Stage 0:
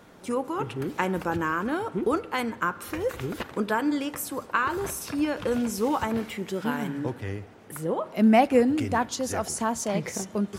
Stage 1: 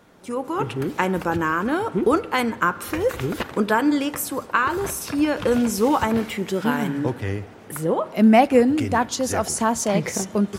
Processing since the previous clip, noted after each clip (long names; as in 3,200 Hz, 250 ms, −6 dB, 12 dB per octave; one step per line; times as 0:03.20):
automatic gain control gain up to 9 dB
level −2 dB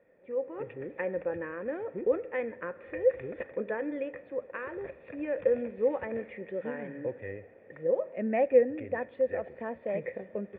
formant resonators in series e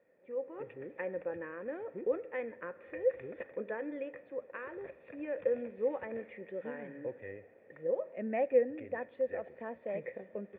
low-shelf EQ 79 Hz −12 dB
level −5 dB